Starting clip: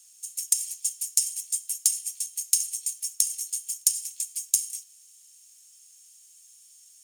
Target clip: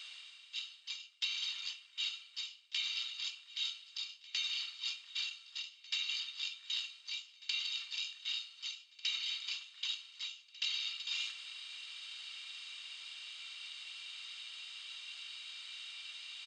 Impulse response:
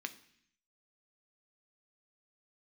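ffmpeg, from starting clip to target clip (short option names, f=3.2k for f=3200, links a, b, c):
-af "lowshelf=f=470:g=-6,areverse,acompressor=threshold=-43dB:ratio=10,areverse,aecho=1:1:639|1278|1917:0.112|0.0393|0.0137,asetrate=18846,aresample=44100,volume=6dB"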